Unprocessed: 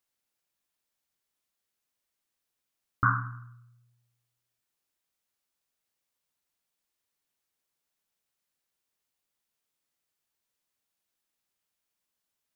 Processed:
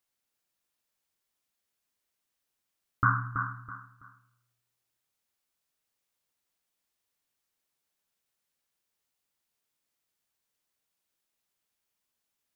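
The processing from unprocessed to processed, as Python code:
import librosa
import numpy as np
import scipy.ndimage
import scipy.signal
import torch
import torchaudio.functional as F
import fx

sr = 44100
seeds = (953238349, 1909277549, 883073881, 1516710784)

y = fx.echo_feedback(x, sr, ms=328, feedback_pct=28, wet_db=-7.0)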